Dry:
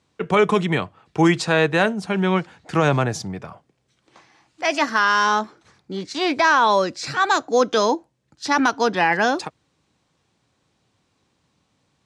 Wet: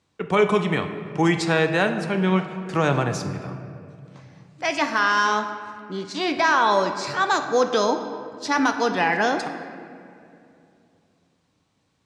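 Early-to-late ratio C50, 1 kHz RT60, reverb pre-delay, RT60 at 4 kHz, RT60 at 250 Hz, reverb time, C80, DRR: 8.0 dB, 2.3 s, 10 ms, 1.4 s, 3.3 s, 2.6 s, 9.5 dB, 6.5 dB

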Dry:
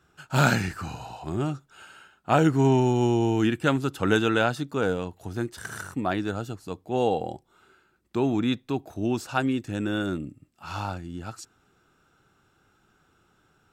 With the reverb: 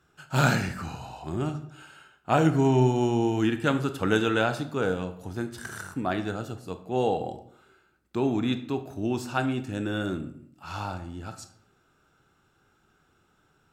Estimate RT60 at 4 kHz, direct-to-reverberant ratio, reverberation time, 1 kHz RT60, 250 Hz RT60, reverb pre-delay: 0.45 s, 8.5 dB, 0.65 s, 0.60 s, 0.70 s, 20 ms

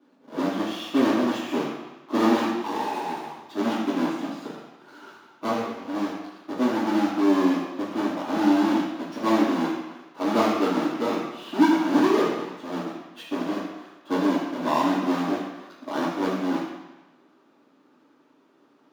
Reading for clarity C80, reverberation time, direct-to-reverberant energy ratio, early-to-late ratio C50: 4.0 dB, 1.1 s, −9.5 dB, 2.0 dB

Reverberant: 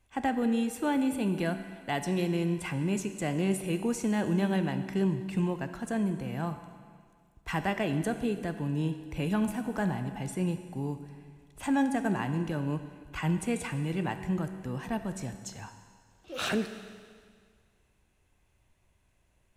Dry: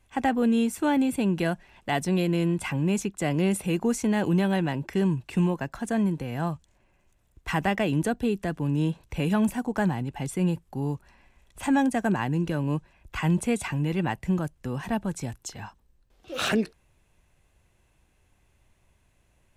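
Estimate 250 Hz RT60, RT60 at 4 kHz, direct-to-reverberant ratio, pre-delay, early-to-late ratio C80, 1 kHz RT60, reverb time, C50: 1.9 s, 1.9 s, 8.0 dB, 11 ms, 11.0 dB, 1.9 s, 1.9 s, 9.5 dB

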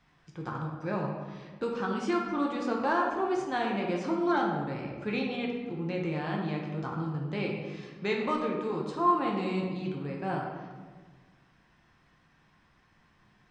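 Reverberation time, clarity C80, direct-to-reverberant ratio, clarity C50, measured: 1.5 s, 4.5 dB, −1.5 dB, 2.5 dB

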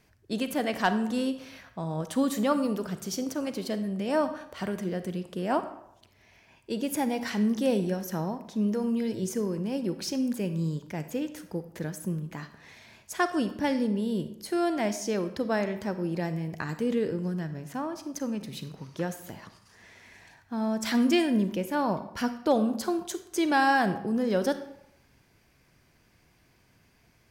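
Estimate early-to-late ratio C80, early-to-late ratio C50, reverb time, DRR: 14.0 dB, 11.5 dB, 0.80 s, 10.0 dB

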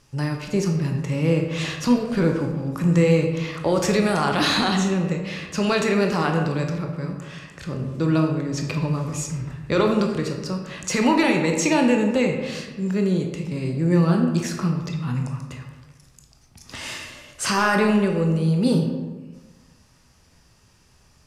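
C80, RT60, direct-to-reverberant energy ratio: 7.0 dB, 1.3 s, 2.0 dB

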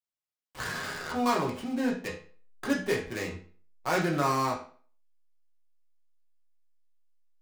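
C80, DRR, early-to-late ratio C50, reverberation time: 12.0 dB, −3.5 dB, 7.5 dB, 0.45 s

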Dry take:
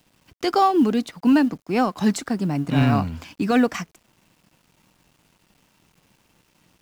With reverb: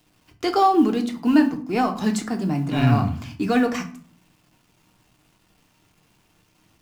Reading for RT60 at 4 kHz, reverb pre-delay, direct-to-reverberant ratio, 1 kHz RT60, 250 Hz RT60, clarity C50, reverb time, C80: 0.30 s, 3 ms, 3.5 dB, 0.45 s, 0.80 s, 12.5 dB, 0.50 s, 17.0 dB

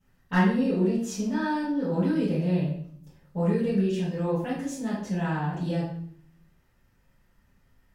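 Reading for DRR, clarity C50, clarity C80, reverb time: −12.5 dB, 2.0 dB, 7.0 dB, 0.60 s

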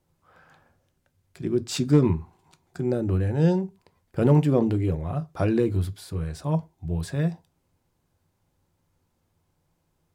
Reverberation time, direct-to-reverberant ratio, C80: non-exponential decay, 12.0 dB, 31.0 dB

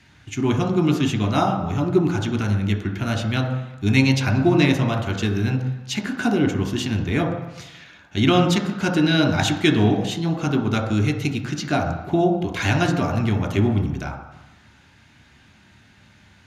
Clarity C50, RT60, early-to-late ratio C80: 8.0 dB, 1.0 s, 10.5 dB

